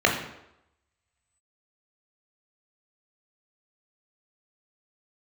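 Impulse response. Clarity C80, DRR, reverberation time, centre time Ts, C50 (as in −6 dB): 9.0 dB, 0.0 dB, 0.85 s, 29 ms, 6.5 dB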